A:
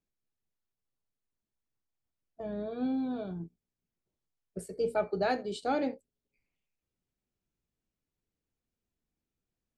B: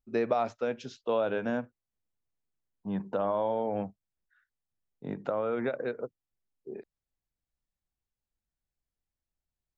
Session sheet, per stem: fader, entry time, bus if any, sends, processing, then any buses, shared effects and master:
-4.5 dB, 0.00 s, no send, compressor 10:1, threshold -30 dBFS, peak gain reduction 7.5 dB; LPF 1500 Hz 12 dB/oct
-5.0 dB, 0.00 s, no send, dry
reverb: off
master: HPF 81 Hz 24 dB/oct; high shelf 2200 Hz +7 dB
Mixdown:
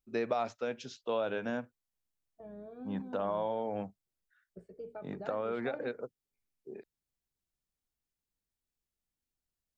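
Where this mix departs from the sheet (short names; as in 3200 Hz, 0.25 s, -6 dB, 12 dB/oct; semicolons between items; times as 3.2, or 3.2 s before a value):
stem A -4.5 dB -> -11.0 dB; master: missing HPF 81 Hz 24 dB/oct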